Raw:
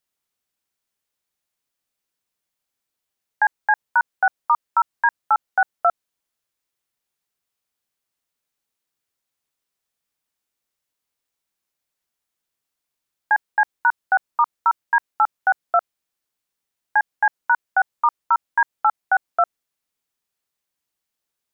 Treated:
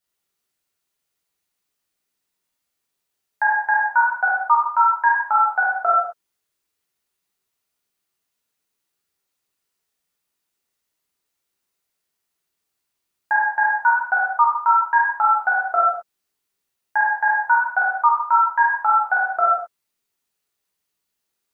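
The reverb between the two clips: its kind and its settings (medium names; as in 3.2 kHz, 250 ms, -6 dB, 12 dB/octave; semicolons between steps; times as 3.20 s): gated-style reverb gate 240 ms falling, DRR -5.5 dB; trim -3 dB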